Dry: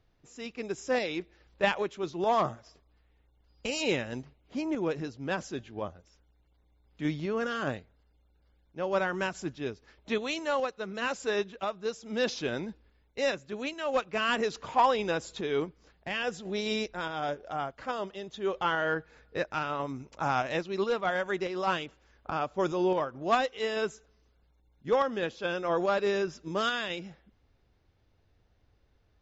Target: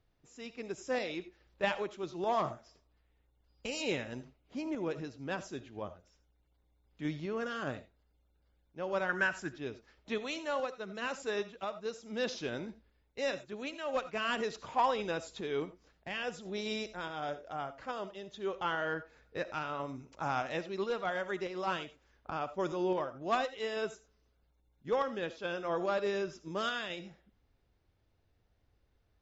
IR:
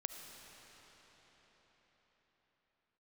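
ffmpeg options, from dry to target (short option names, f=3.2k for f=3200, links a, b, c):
-filter_complex "[0:a]asettb=1/sr,asplit=3[a][b][c];[a]atrim=end=9.094[d];[b]atrim=start=9.09:end=9.51,asetpts=PTS-STARTPTS,afade=t=in:d=0.004:c=qsin,afade=t=out:st=0.416:d=0.004:c=qsin,equalizer=f=1.6k:w=2.9:g=13.5[e];[c]atrim=start=9.506[f];[d][e]acrossfade=d=0.004:c1=hsin:c2=qsin[g];[g][f]acrossfade=d=0.004:c1=qsin:c2=hsin[h];[1:a]atrim=start_sample=2205,atrim=end_sample=4410[i];[h][i]afir=irnorm=-1:irlink=0,volume=-2.5dB"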